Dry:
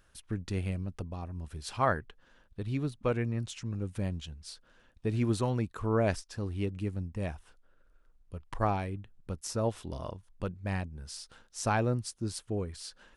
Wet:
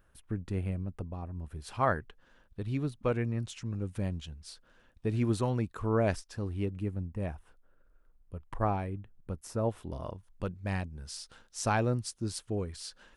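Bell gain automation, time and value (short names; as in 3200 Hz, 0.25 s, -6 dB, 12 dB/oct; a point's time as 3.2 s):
bell 5200 Hz 2.1 oct
1.47 s -12 dB
1.91 s -2.5 dB
6.31 s -2.5 dB
6.95 s -10.5 dB
9.77 s -10.5 dB
10.6 s +1 dB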